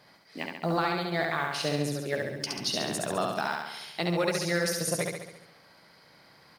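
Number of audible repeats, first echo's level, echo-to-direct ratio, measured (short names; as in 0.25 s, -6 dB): 7, -3.0 dB, -1.0 dB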